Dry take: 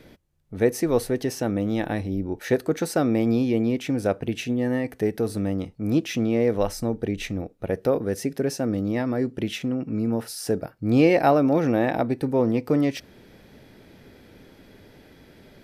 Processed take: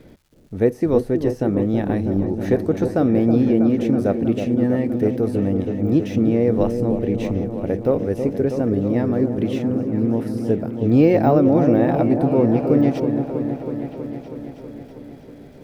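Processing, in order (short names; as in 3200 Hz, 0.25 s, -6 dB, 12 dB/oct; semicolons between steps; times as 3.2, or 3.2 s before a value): de-esser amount 85%; tilt shelf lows +5 dB; crackle 490/s -52 dBFS; on a send: repeats that get brighter 0.322 s, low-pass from 750 Hz, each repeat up 1 oct, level -6 dB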